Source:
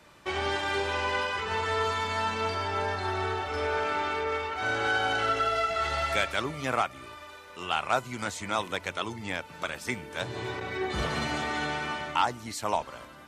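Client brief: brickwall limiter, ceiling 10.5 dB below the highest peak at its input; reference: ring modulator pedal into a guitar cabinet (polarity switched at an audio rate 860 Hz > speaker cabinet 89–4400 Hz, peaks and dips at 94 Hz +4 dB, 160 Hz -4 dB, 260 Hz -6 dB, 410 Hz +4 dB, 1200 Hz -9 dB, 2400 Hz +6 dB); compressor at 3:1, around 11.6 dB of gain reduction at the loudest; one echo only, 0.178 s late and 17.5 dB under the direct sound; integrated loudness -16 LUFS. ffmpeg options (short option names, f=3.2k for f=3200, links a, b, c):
-af "acompressor=threshold=-37dB:ratio=3,alimiter=level_in=6.5dB:limit=-24dB:level=0:latency=1,volume=-6.5dB,aecho=1:1:178:0.133,aeval=exprs='val(0)*sgn(sin(2*PI*860*n/s))':c=same,highpass=89,equalizer=f=94:t=q:w=4:g=4,equalizer=f=160:t=q:w=4:g=-4,equalizer=f=260:t=q:w=4:g=-6,equalizer=f=410:t=q:w=4:g=4,equalizer=f=1.2k:t=q:w=4:g=-9,equalizer=f=2.4k:t=q:w=4:g=6,lowpass=f=4.4k:w=0.5412,lowpass=f=4.4k:w=1.3066,volume=23dB"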